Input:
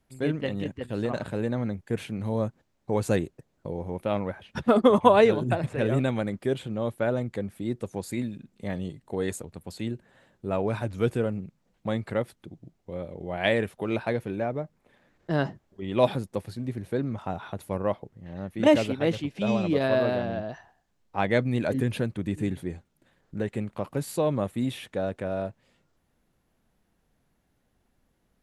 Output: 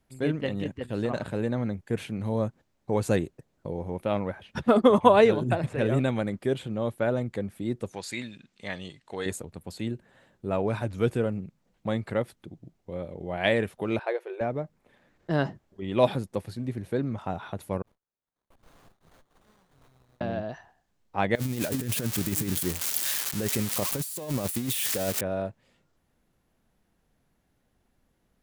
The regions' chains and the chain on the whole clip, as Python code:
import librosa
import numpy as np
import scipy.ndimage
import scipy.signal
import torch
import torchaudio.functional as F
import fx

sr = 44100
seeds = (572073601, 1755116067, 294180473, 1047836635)

y = fx.chain(x, sr, fx.lowpass(hz=5700.0, slope=12),
    fx.tilt_shelf(db=-9.5, hz=860.0), at=(7.93, 9.26))
y = fx.chain(y, sr, fx.brickwall_highpass(low_hz=340.0),
    fx.high_shelf(hz=4100.0, db=-11.5), at=(13.99, 14.41))
y = fx.chain(y, sr, fx.cheby2_highpass(hz=1500.0, order=4, stop_db=80),
    fx.leveller(passes=2),
    fx.running_max(window=17), at=(17.82, 20.21))
y = fx.chain(y, sr, fx.crossing_spikes(level_db=-19.0),
    fx.over_compress(threshold_db=-28.0, ratio=-0.5), at=(21.35, 25.21))